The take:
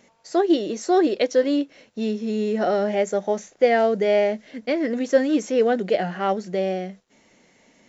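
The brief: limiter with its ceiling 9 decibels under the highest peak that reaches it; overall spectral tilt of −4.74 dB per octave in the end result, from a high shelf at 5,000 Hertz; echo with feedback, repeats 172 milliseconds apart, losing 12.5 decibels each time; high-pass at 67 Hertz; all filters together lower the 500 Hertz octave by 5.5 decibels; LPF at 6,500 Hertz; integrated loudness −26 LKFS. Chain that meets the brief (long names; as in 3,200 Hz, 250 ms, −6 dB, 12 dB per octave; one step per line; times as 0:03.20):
high-pass filter 67 Hz
low-pass filter 6,500 Hz
parametric band 500 Hz −7 dB
high-shelf EQ 5,000 Hz +6 dB
brickwall limiter −18 dBFS
repeating echo 172 ms, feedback 24%, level −12.5 dB
level +2 dB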